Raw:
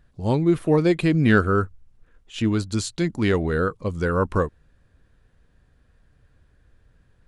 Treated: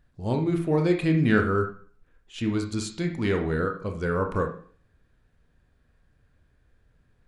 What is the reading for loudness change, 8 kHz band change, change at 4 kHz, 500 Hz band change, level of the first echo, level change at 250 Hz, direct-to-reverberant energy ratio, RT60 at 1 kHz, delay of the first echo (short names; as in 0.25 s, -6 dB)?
-4.0 dB, -5.5 dB, -5.0 dB, -3.5 dB, none, -3.5 dB, 3.0 dB, 0.45 s, none